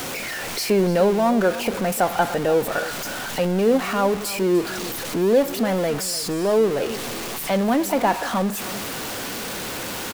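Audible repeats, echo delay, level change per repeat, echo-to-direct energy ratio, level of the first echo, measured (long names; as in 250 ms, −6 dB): 1, 297 ms, repeats not evenly spaced, −15.5 dB, −15.5 dB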